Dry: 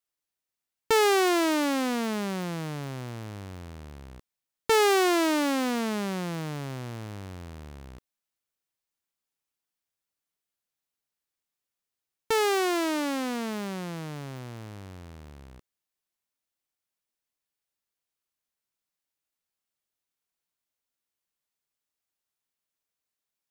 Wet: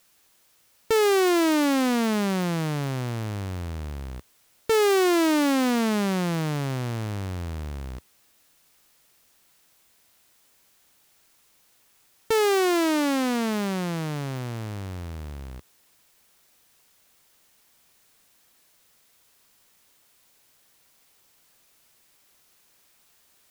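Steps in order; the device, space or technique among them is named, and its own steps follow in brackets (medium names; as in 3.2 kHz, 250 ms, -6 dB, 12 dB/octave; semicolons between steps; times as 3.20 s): open-reel tape (saturation -24.5 dBFS, distortion -11 dB; peaking EQ 74 Hz +4.5 dB 1.06 oct; white noise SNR 34 dB); trim +7 dB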